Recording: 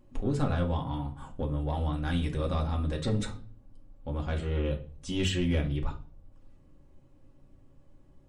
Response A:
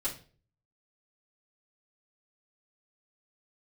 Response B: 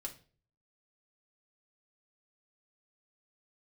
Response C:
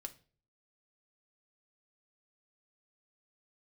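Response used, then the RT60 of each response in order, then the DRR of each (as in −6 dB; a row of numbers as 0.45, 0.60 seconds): B; 0.40, 0.40, 0.40 seconds; −8.5, 0.5, 6.0 decibels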